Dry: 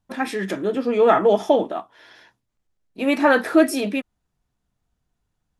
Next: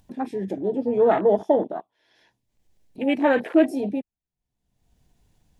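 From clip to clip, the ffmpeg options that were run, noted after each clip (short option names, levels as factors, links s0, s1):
-af "afwtdn=0.0631,equalizer=f=1300:w=2.6:g=-11.5,acompressor=mode=upward:threshold=0.0158:ratio=2.5,volume=0.841"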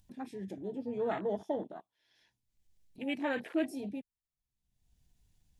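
-af "equalizer=f=560:w=0.35:g=-11,volume=0.562"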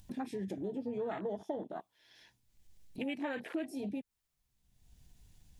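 -af "acompressor=threshold=0.00562:ratio=5,volume=2.82"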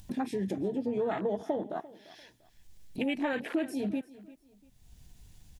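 -af "aecho=1:1:345|690:0.112|0.0325,volume=2.11"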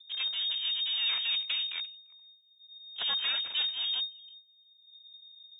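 -af "aeval=exprs='abs(val(0))':c=same,anlmdn=0.00631,lowpass=f=3100:t=q:w=0.5098,lowpass=f=3100:t=q:w=0.6013,lowpass=f=3100:t=q:w=0.9,lowpass=f=3100:t=q:w=2.563,afreqshift=-3700"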